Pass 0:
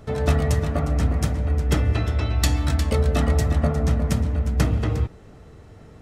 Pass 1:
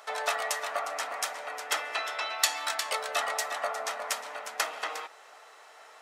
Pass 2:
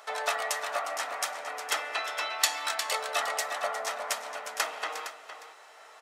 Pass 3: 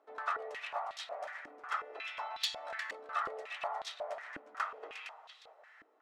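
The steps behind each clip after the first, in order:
high-pass 740 Hz 24 dB/octave; in parallel at -0.5 dB: compression, threshold -40 dBFS, peak gain reduction 18 dB
delay 462 ms -11.5 dB
integer overflow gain 13.5 dB; step-sequenced band-pass 5.5 Hz 300–3700 Hz; trim +1 dB

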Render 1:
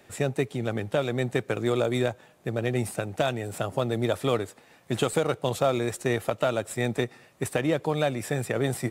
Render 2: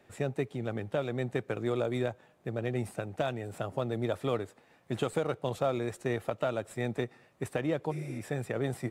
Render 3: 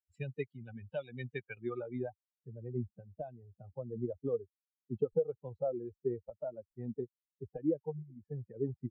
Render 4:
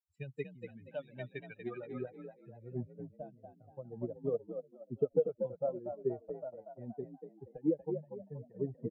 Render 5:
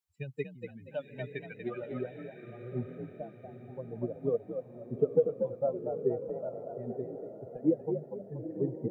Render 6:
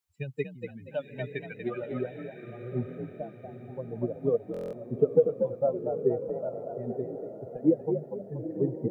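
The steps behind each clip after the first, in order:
spectral replace 7.93–8.16 s, 270–12000 Hz after; treble shelf 3.5 kHz -8.5 dB; trim -5.5 dB
expander on every frequency bin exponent 3; low-pass sweep 3.1 kHz -> 440 Hz, 1.42–2.43 s; trim -1 dB
on a send: frequency-shifting echo 238 ms, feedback 43%, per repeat +45 Hz, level -5 dB; on the sum: upward expansion 1.5:1, over -48 dBFS; trim +2 dB
echo that smears into a reverb 904 ms, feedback 41%, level -9.5 dB; trim +4 dB
buffer glitch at 4.52 s, samples 1024, times 8; trim +4 dB

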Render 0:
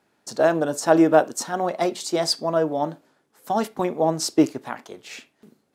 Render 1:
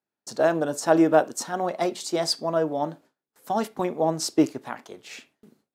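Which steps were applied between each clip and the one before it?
gate with hold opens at -47 dBFS; trim -2.5 dB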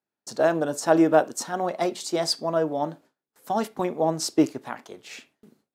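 no audible change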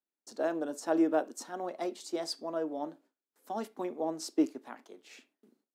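ladder high-pass 220 Hz, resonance 40%; trim -4 dB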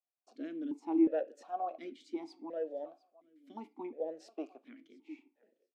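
feedback delay 703 ms, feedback 18%, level -23.5 dB; stepped vowel filter 2.8 Hz; trim +5.5 dB

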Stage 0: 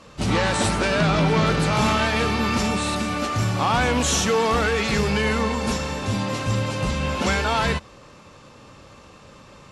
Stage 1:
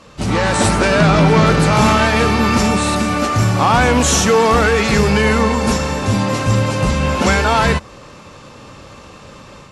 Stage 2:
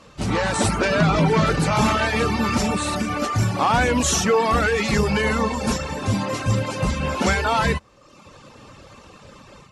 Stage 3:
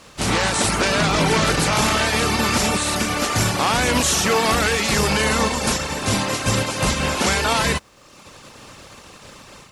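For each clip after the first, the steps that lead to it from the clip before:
dynamic bell 3.4 kHz, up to -4 dB, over -41 dBFS, Q 1.3; level rider gain up to 5 dB; trim +3.5 dB
reverb removal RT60 0.9 s; trim -4.5 dB
spectral contrast reduction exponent 0.59; peak limiter -11.5 dBFS, peak gain reduction 5.5 dB; trim +2.5 dB

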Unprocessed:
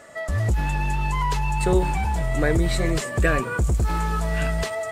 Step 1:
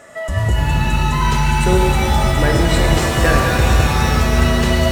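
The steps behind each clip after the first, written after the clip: band-stop 4.5 kHz; pitch-shifted reverb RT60 3.1 s, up +7 st, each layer -2 dB, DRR 0.5 dB; trim +3.5 dB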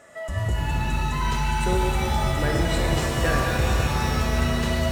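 reverberation RT60 0.55 s, pre-delay 45 ms, DRR 9 dB; trim -8.5 dB

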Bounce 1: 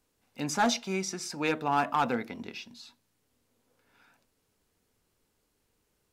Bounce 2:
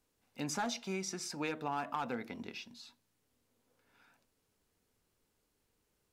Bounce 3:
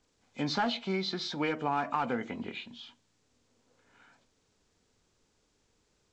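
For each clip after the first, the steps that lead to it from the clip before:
compression 6:1, threshold -29 dBFS, peak gain reduction 8 dB; trim -4 dB
knee-point frequency compression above 2 kHz 1.5:1; trim +6.5 dB

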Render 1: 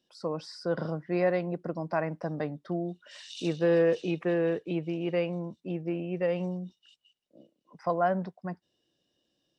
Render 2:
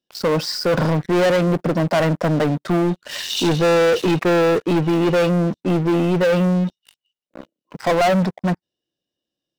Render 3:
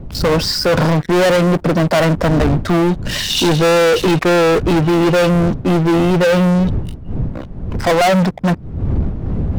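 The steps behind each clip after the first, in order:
waveshaping leveller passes 5; trim +2 dB
wind noise 130 Hz -29 dBFS; vibrato 3.5 Hz 32 cents; saturation -18.5 dBFS, distortion -14 dB; trim +8.5 dB

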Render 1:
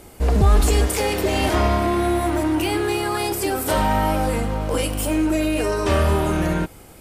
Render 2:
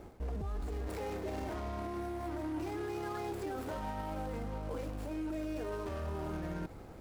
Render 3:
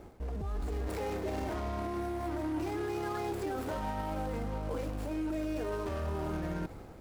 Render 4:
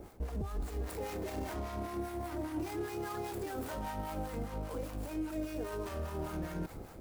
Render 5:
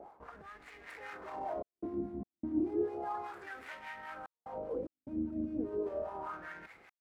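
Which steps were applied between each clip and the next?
median filter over 15 samples; reverse; compression 6:1, threshold -27 dBFS, peak gain reduction 15.5 dB; reverse; peak limiter -27.5 dBFS, peak gain reduction 8.5 dB; trim -4 dB
level rider gain up to 3.5 dB
treble shelf 8 kHz +11 dB; peak limiter -31.5 dBFS, peak gain reduction 8.5 dB; harmonic tremolo 5 Hz, depth 70%, crossover 760 Hz; trim +3.5 dB
octave divider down 2 oct, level 0 dB; wah-wah 0.33 Hz 220–2100 Hz, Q 3.5; trance gate "xxxxxxxx.xx.x" 74 bpm -60 dB; trim +8.5 dB

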